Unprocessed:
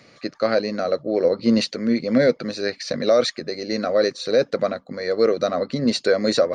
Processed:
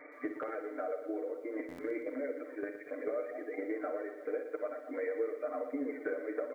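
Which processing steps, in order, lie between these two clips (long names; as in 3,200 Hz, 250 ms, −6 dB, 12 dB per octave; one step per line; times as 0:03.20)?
harmonic and percussive parts rebalanced percussive −3 dB
echo with shifted repeats 219 ms, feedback 37%, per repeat +44 Hz, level −20 dB
0:00.96–0:03.58: output level in coarse steps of 12 dB
brick-wall band-pass 250–2,400 Hz
reverb reduction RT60 0.8 s
downward compressor 16 to 1, threshold −37 dBFS, peak gain reduction 23.5 dB
comb filter 6.6 ms, depth 95%
ambience of single reflections 51 ms −13 dB, 63 ms −10.5 dB
buffer that repeats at 0:01.68, samples 512, times 8
feedback echo at a low word length 119 ms, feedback 55%, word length 11 bits, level −10 dB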